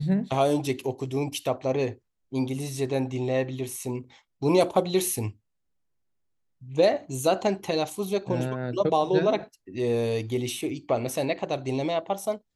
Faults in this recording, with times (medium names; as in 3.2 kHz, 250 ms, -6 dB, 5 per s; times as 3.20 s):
3.83 s: dropout 2.4 ms